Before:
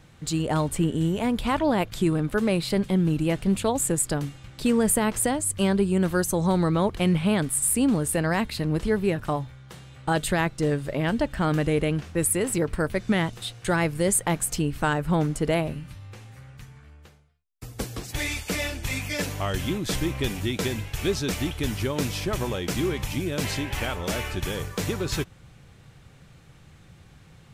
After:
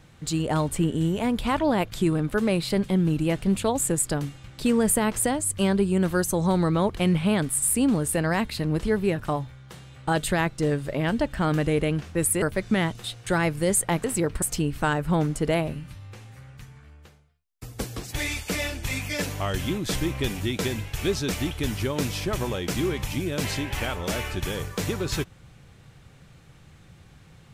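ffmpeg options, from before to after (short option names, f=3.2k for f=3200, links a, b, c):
-filter_complex "[0:a]asplit=4[a][b][c][d];[a]atrim=end=12.422[e];[b]atrim=start=12.798:end=14.422[f];[c]atrim=start=12.418:end=12.802[g];[d]atrim=start=14.418[h];[e][f]acrossfade=d=0.004:c1=hsin:c2=hsin[i];[i][g]acrossfade=d=0.004:c1=hsin:c2=hsin[j];[j][h]acrossfade=d=0.004:c1=hsin:c2=hsin"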